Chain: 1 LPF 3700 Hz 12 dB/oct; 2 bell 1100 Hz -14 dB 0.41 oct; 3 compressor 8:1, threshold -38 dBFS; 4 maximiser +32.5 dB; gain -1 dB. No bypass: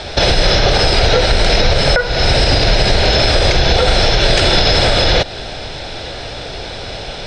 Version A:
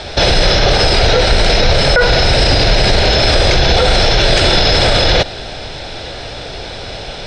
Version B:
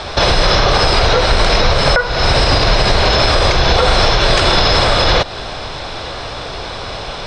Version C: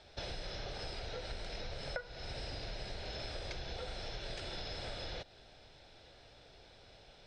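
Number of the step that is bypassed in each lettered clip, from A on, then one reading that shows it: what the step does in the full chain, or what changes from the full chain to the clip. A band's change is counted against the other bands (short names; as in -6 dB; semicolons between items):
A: 3, momentary loudness spread change +1 LU; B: 2, 1 kHz band +4.5 dB; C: 4, crest factor change +8.5 dB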